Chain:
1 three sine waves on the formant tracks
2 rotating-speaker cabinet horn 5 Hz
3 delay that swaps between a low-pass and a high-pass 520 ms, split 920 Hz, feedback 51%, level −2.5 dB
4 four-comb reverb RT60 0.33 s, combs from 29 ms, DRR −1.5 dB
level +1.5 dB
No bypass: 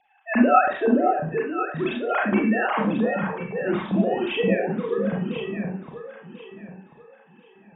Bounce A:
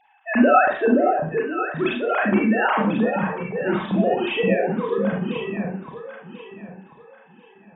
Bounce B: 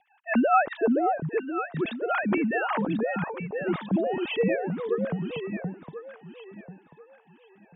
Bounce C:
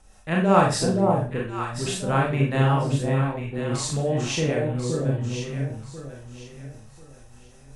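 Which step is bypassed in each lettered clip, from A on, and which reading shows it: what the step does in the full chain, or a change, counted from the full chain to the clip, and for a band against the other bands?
2, 2 kHz band +1.5 dB
4, echo-to-direct ratio 3.0 dB to −6.0 dB
1, 125 Hz band +12.5 dB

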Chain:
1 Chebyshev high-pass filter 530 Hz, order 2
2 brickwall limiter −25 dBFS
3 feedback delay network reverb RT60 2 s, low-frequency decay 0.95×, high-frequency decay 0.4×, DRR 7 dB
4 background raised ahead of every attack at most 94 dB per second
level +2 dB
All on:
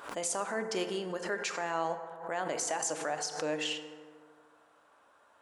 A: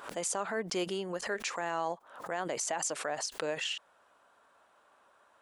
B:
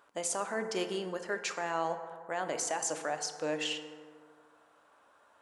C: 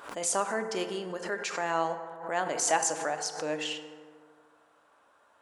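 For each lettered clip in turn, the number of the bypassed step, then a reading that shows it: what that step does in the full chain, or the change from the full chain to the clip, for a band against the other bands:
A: 3, change in crest factor +3.0 dB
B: 4, change in crest factor −4.0 dB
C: 2, average gain reduction 1.5 dB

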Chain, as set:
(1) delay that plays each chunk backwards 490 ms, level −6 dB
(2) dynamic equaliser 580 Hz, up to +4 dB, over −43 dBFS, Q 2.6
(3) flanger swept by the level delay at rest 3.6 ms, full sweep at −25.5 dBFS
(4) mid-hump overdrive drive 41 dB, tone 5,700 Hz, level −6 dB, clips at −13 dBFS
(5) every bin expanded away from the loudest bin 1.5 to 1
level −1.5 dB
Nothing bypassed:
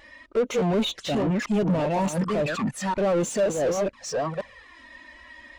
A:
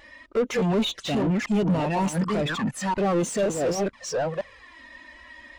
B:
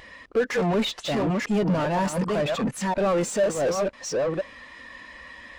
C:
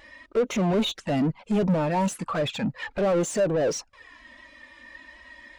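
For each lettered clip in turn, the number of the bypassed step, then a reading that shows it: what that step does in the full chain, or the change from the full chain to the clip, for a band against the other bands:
2, change in momentary loudness spread +7 LU
3, 2 kHz band +2.0 dB
1, change in momentary loudness spread −3 LU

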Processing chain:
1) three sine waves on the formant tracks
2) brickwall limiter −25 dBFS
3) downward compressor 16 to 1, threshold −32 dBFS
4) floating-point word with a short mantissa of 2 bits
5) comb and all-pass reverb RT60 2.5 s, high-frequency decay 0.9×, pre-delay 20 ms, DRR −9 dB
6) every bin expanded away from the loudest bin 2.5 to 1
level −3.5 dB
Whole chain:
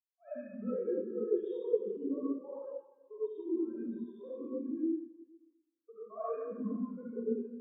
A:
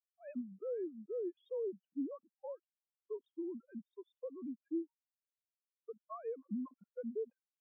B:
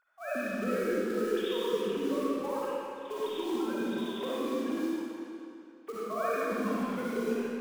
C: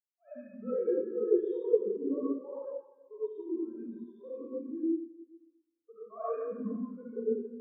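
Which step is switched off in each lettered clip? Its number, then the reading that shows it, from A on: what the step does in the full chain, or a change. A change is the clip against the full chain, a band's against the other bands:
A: 5, change in crest factor −5.0 dB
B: 6, change in crest factor −5.0 dB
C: 3, average gain reduction 2.0 dB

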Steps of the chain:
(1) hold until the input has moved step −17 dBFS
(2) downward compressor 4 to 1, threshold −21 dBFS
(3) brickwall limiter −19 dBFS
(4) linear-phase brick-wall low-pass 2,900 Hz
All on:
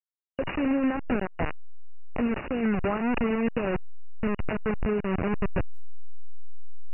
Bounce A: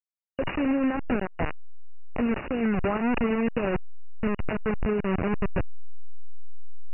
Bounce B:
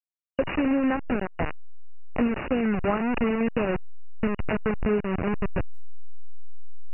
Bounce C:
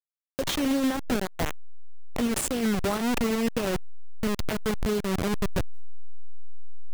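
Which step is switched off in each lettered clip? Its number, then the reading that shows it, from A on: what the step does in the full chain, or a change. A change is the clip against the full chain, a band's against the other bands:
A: 2, average gain reduction 2.0 dB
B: 3, change in crest factor +5.0 dB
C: 4, change in crest factor −1.5 dB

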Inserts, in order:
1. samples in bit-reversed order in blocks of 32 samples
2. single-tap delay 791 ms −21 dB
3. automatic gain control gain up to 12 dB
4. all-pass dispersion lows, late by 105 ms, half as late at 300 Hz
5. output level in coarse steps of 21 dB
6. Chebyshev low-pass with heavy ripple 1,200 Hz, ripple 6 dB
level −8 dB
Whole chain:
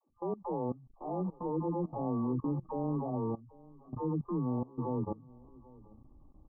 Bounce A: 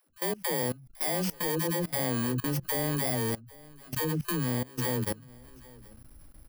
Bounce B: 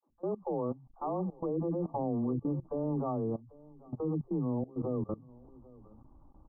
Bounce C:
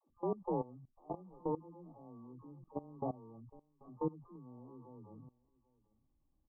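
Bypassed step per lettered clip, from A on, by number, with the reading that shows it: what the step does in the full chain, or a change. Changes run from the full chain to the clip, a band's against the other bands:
6, 250 Hz band −2.5 dB
1, 500 Hz band +2.5 dB
3, change in crest factor +7.0 dB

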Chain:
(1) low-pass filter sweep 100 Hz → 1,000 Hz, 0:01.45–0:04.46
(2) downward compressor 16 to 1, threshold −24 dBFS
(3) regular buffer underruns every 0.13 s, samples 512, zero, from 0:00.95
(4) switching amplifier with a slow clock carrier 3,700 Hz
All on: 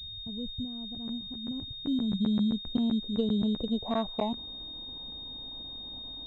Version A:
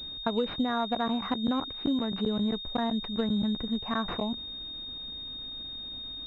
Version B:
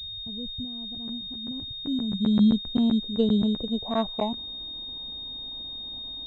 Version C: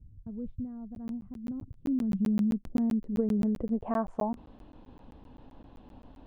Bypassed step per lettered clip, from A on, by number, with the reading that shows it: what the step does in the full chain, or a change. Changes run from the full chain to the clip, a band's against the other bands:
1, 1 kHz band +6.5 dB
2, change in momentary loudness spread +2 LU
4, change in momentary loudness spread +1 LU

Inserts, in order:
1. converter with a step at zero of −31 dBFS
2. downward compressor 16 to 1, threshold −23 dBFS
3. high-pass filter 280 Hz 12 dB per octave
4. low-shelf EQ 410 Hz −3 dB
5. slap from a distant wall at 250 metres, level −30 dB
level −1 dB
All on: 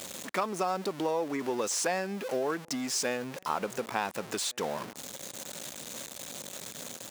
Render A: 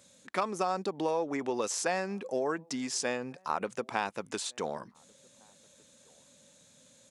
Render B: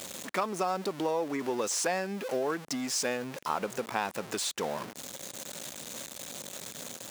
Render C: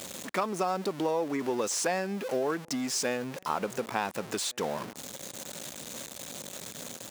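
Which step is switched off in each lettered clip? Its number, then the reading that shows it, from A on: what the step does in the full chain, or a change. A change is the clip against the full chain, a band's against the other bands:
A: 1, distortion level −13 dB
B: 5, echo-to-direct ratio −34.5 dB to none audible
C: 4, 125 Hz band +2.0 dB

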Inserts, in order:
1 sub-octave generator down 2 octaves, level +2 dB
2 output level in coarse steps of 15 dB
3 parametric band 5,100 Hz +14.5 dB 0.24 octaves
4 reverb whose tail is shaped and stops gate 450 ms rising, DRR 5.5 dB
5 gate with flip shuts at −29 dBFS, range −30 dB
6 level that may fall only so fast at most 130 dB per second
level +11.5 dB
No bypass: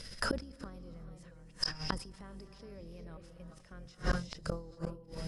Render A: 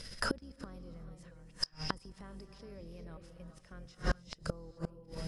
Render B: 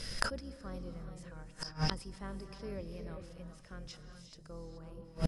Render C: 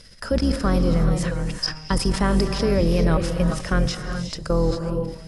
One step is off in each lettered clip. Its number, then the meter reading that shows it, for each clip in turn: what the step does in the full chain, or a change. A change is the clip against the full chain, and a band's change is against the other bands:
6, change in integrated loudness −2.0 LU
2, change in crest factor +6.0 dB
5, change in momentary loudness spread −10 LU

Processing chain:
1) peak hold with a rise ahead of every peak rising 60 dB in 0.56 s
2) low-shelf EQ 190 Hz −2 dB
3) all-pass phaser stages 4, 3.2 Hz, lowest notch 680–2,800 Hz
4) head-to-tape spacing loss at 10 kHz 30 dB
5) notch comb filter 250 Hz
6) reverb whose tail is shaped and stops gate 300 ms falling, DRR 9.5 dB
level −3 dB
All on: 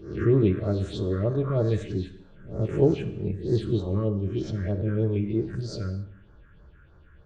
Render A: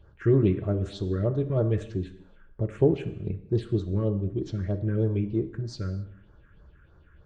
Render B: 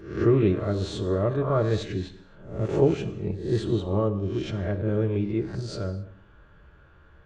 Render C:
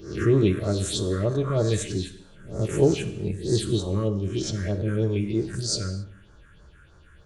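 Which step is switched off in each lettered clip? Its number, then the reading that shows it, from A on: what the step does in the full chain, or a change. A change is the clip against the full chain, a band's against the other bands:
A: 1, 4 kHz band −2.0 dB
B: 3, 1 kHz band +5.5 dB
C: 4, 4 kHz band +11.0 dB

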